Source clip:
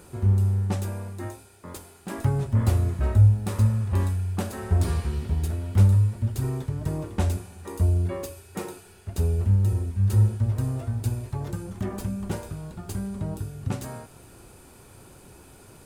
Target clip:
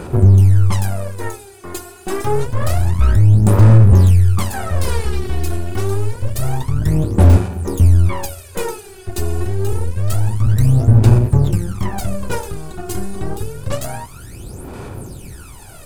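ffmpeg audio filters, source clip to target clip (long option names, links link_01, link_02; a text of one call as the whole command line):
ffmpeg -i in.wav -af "apsyclip=23.5dB,aeval=exprs='1.12*(cos(1*acos(clip(val(0)/1.12,-1,1)))-cos(1*PI/2))+0.0708*(cos(3*acos(clip(val(0)/1.12,-1,1)))-cos(3*PI/2))+0.158*(cos(4*acos(clip(val(0)/1.12,-1,1)))-cos(4*PI/2))+0.0447*(cos(5*acos(clip(val(0)/1.12,-1,1)))-cos(5*PI/2))':channel_layout=same,aphaser=in_gain=1:out_gain=1:delay=2.8:decay=0.77:speed=0.27:type=sinusoidal,volume=-15.5dB" out.wav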